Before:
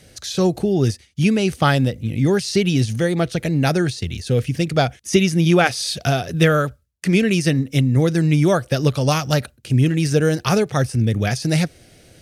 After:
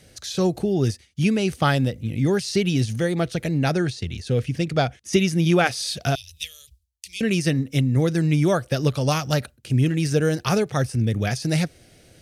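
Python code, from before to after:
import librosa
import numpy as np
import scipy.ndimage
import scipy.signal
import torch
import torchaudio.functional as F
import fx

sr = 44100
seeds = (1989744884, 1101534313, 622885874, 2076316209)

y = fx.high_shelf(x, sr, hz=11000.0, db=-11.5, at=(3.58, 5.13))
y = fx.cheby2_bandstop(y, sr, low_hz=140.0, high_hz=1600.0, order=4, stop_db=40, at=(6.15, 7.21))
y = y * 10.0 ** (-3.5 / 20.0)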